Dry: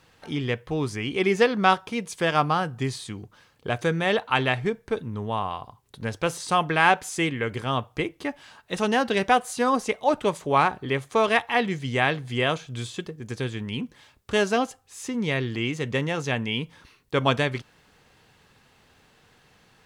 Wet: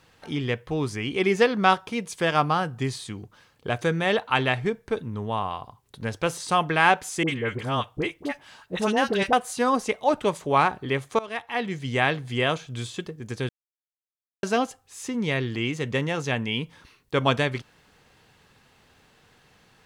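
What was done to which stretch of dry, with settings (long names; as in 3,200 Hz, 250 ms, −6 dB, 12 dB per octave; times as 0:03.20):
0:07.23–0:09.33: all-pass dispersion highs, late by 52 ms, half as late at 1,000 Hz
0:11.19–0:11.94: fade in, from −20 dB
0:13.49–0:14.43: silence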